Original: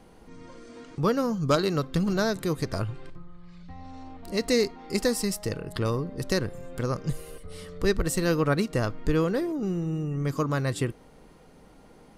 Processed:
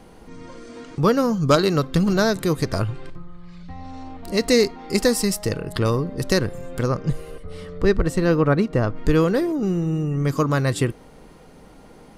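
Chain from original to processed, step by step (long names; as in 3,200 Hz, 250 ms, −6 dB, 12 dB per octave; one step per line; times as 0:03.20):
0:06.87–0:08.95: low-pass filter 2,900 Hz → 1,300 Hz 6 dB per octave
level +6.5 dB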